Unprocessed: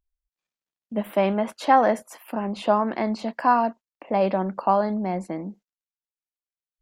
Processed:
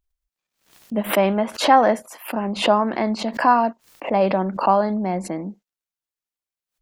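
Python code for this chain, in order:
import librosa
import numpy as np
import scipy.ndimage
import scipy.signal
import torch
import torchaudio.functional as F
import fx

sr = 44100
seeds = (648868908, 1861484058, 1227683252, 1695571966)

y = fx.pre_swell(x, sr, db_per_s=140.0)
y = F.gain(torch.from_numpy(y), 3.0).numpy()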